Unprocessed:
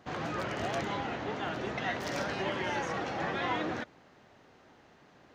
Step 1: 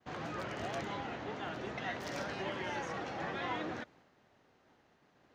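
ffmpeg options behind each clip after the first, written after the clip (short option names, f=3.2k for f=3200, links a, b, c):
-af "agate=range=-33dB:threshold=-55dB:ratio=3:detection=peak,volume=-5.5dB"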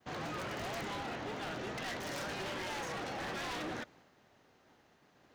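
-af "highshelf=f=4.6k:g=6,aeval=exprs='0.0158*(abs(mod(val(0)/0.0158+3,4)-2)-1)':c=same,volume=1.5dB"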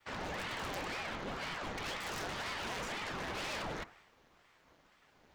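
-af "bandreject=f=94.23:t=h:w=4,bandreject=f=188.46:t=h:w=4,bandreject=f=282.69:t=h:w=4,bandreject=f=376.92:t=h:w=4,bandreject=f=471.15:t=h:w=4,bandreject=f=565.38:t=h:w=4,bandreject=f=659.61:t=h:w=4,bandreject=f=753.84:t=h:w=4,bandreject=f=848.07:t=h:w=4,bandreject=f=942.3:t=h:w=4,bandreject=f=1.03653k:t=h:w=4,bandreject=f=1.13076k:t=h:w=4,bandreject=f=1.22499k:t=h:w=4,bandreject=f=1.31922k:t=h:w=4,bandreject=f=1.41345k:t=h:w=4,bandreject=f=1.50768k:t=h:w=4,bandreject=f=1.60191k:t=h:w=4,bandreject=f=1.69614k:t=h:w=4,aeval=exprs='val(0)*sin(2*PI*860*n/s+860*0.9/2*sin(2*PI*2*n/s))':c=same,volume=3dB"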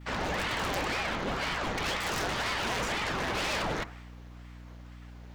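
-af "aeval=exprs='val(0)+0.002*(sin(2*PI*60*n/s)+sin(2*PI*2*60*n/s)/2+sin(2*PI*3*60*n/s)/3+sin(2*PI*4*60*n/s)/4+sin(2*PI*5*60*n/s)/5)':c=same,volume=8.5dB"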